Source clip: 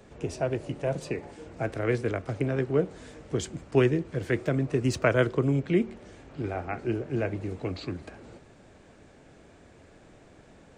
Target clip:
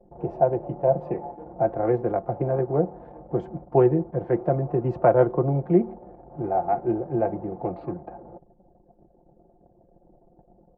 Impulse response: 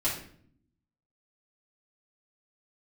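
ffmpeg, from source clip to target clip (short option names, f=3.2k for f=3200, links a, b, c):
-af "anlmdn=0.0158,lowpass=f=790:t=q:w=4.9,aecho=1:1:5.7:0.64"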